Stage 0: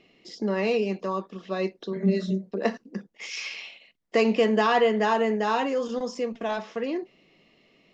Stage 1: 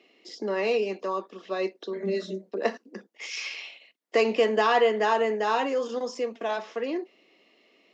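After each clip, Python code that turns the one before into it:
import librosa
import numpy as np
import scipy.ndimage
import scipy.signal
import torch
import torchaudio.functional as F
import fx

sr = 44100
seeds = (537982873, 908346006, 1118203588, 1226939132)

y = scipy.signal.sosfilt(scipy.signal.butter(4, 270.0, 'highpass', fs=sr, output='sos'), x)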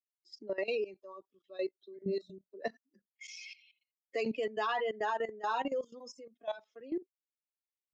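y = fx.bin_expand(x, sr, power=2.0)
y = fx.level_steps(y, sr, step_db=16)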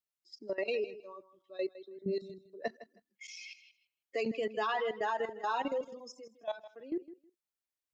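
y = fx.echo_feedback(x, sr, ms=159, feedback_pct=18, wet_db=-15.5)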